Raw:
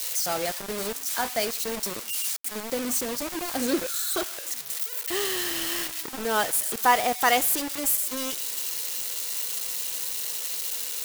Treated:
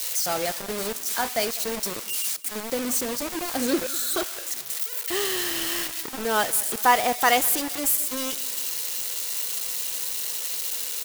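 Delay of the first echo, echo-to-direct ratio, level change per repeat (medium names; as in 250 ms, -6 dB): 200 ms, -19.5 dB, -5.5 dB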